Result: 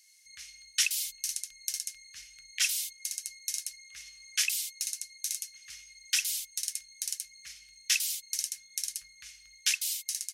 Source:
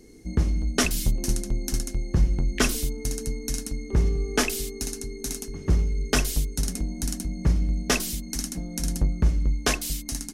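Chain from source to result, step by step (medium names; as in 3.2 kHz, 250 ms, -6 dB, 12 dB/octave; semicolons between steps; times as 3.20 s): inverse Chebyshev high-pass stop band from 850 Hz, stop band 50 dB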